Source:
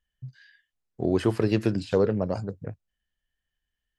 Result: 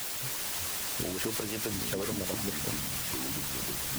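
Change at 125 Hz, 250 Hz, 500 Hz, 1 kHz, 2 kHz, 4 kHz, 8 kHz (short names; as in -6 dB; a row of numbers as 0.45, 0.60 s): -9.0 dB, -9.0 dB, -11.0 dB, -1.5 dB, +4.0 dB, +9.5 dB, n/a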